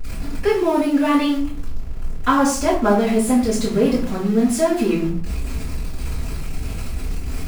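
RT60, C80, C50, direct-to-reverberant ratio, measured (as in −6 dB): 0.50 s, 11.0 dB, 6.0 dB, −11.0 dB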